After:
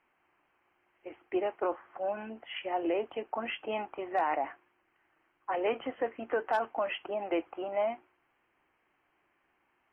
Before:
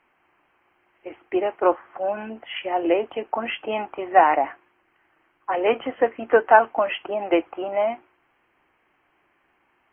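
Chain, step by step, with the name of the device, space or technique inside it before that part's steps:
clipper into limiter (hard clipping −5 dBFS, distortion −27 dB; brickwall limiter −13 dBFS, peak gain reduction 8 dB)
level −8 dB

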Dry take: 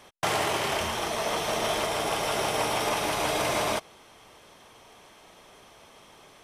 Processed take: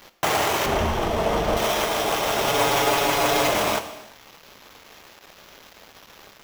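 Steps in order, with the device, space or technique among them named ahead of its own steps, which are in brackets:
early 8-bit sampler (sample-rate reduction 9,000 Hz, jitter 0%; bit reduction 8 bits)
0:00.66–0:01.57: spectral tilt −3 dB per octave
0:02.47–0:03.49: comb filter 7.1 ms, depth 73%
parametric band 130 Hz −3.5 dB 0.77 octaves
reverb whose tail is shaped and stops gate 390 ms falling, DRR 9 dB
level +4.5 dB

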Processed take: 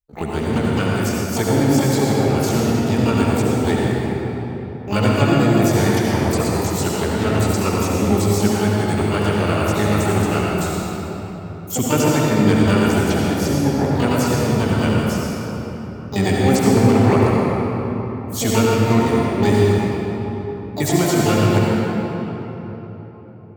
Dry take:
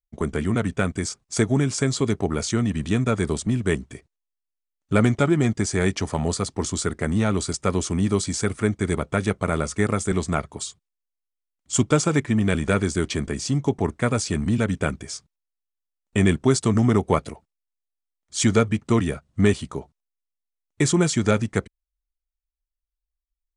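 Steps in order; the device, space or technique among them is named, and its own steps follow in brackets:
shimmer-style reverb (pitch-shifted copies added +12 semitones −5 dB; convolution reverb RT60 4.1 s, pre-delay 64 ms, DRR −4.5 dB)
level −2 dB

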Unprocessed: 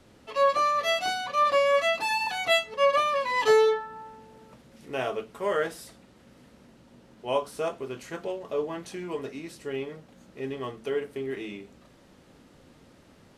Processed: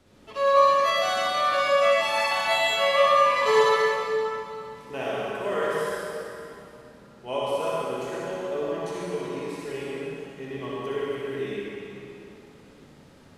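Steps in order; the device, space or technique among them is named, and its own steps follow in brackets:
tunnel (flutter between parallel walls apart 10.5 metres, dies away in 0.57 s; convolution reverb RT60 2.9 s, pre-delay 50 ms, DRR −5 dB)
level −4 dB

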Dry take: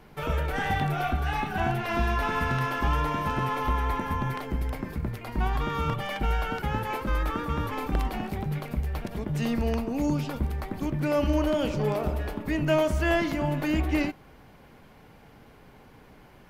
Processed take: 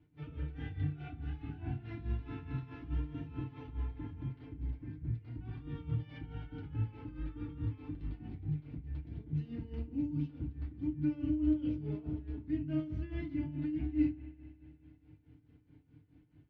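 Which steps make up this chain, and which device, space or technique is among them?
guitar amp tone stack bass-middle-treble 10-0-1
feedback delay network reverb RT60 0.39 s, low-frequency decay 1.05×, high-frequency decay 0.55×, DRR −4.5 dB
combo amplifier with spring reverb and tremolo (spring reverb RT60 3 s, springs 58 ms, chirp 65 ms, DRR 11.5 dB; amplitude tremolo 4.7 Hz, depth 77%; loudspeaker in its box 87–3,800 Hz, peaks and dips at 100 Hz +9 dB, 310 Hz +6 dB, 510 Hz −4 dB)

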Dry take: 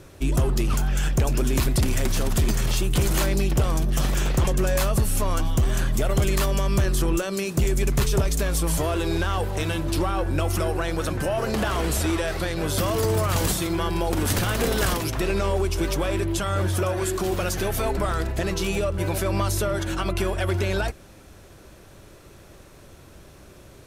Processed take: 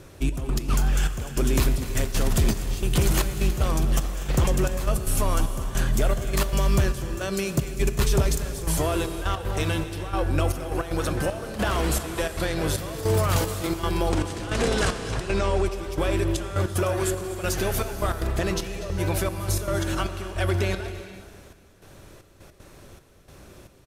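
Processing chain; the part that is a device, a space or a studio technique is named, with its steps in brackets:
0:14.09–0:15.66: low-pass filter 9,000 Hz 24 dB per octave
trance gate with a delay (gate pattern "xxx..x.xxxx...x" 154 BPM −12 dB; repeating echo 243 ms, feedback 42%, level −16.5 dB)
reverb whose tail is shaped and stops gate 480 ms flat, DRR 10 dB

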